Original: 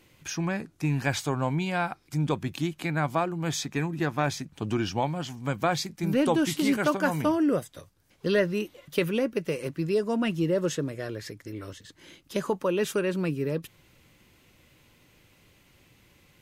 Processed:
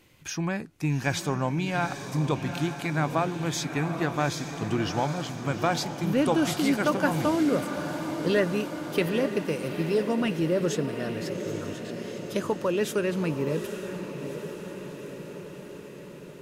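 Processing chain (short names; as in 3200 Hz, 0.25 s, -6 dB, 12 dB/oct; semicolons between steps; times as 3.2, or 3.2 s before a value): diffused feedback echo 0.826 s, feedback 66%, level -8.5 dB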